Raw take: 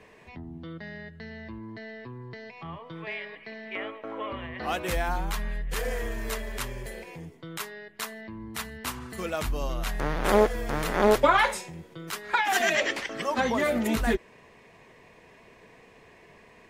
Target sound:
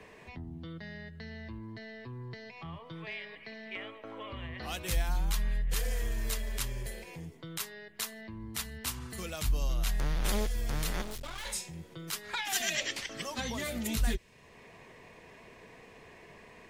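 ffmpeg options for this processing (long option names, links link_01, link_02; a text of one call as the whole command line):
ffmpeg -i in.wav -filter_complex "[0:a]acrossover=split=150|3000[link_01][link_02][link_03];[link_02]acompressor=threshold=-53dB:ratio=2[link_04];[link_01][link_04][link_03]amix=inputs=3:normalize=0,asplit=3[link_05][link_06][link_07];[link_05]afade=type=out:start_time=11.01:duration=0.02[link_08];[link_06]aeval=exprs='(tanh(112*val(0)+0.8)-tanh(0.8))/112':channel_layout=same,afade=type=in:start_time=11.01:duration=0.02,afade=type=out:start_time=11.45:duration=0.02[link_09];[link_07]afade=type=in:start_time=11.45:duration=0.02[link_10];[link_08][link_09][link_10]amix=inputs=3:normalize=0,volume=1.5dB" out.wav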